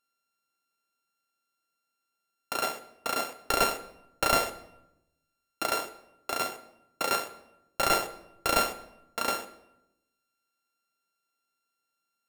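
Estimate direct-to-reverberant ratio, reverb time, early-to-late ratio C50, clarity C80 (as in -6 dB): 10.5 dB, 0.85 s, 14.0 dB, 16.5 dB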